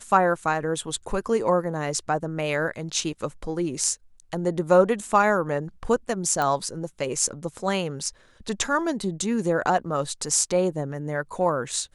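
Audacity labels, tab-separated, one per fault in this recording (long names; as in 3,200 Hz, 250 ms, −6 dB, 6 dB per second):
6.420000	6.420000	click −12 dBFS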